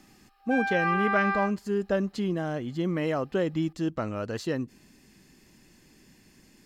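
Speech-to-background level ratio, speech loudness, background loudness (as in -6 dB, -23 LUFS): -1.0 dB, -29.5 LUFS, -28.5 LUFS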